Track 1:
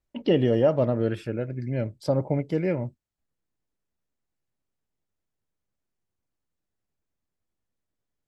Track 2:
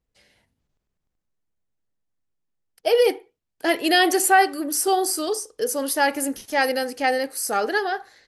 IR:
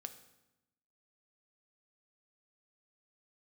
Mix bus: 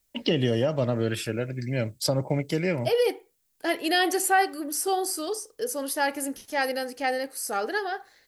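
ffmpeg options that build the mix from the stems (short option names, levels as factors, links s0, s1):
-filter_complex "[0:a]acrossover=split=220[s0][s1];[s1]acompressor=threshold=0.0631:ratio=6[s2];[s0][s2]amix=inputs=2:normalize=0,crystalizer=i=8.5:c=0,volume=0.944[s3];[1:a]volume=0.531[s4];[s3][s4]amix=inputs=2:normalize=0"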